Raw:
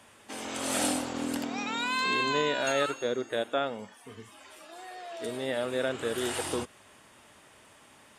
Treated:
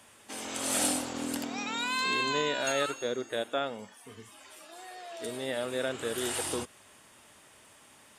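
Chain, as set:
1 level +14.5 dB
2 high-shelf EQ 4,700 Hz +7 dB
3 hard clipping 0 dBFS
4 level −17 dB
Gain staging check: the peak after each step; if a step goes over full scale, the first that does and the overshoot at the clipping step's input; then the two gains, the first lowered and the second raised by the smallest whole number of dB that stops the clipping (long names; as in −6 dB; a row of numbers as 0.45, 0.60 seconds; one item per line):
−1.5, +4.0, 0.0, −17.0 dBFS
step 2, 4.0 dB
step 1 +10.5 dB, step 4 −13 dB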